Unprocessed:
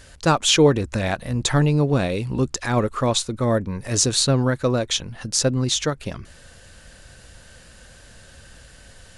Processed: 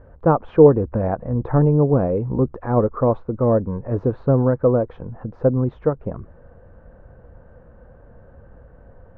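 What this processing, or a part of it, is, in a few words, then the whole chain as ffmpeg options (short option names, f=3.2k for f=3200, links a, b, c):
under water: -af "lowpass=f=1.1k:w=0.5412,lowpass=f=1.1k:w=1.3066,equalizer=f=480:t=o:w=0.26:g=6,volume=2dB"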